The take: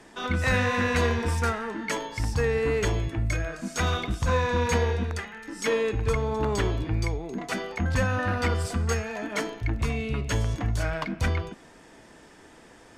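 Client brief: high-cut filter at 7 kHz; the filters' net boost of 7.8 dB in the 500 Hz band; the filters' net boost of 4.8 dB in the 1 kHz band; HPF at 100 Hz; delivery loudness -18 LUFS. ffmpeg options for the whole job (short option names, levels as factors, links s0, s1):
-af "highpass=100,lowpass=7000,equalizer=f=500:t=o:g=8,equalizer=f=1000:t=o:g=3.5,volume=2"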